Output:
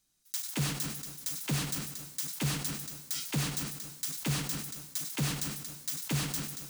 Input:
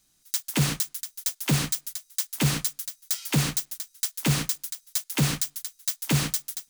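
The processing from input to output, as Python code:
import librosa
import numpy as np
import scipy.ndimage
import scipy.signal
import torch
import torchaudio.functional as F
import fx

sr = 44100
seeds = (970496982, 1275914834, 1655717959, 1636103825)

y = fx.rev_plate(x, sr, seeds[0], rt60_s=1.4, hf_ratio=0.8, predelay_ms=85, drr_db=9.0)
y = fx.sustainer(y, sr, db_per_s=64.0)
y = y * librosa.db_to_amplitude(-9.0)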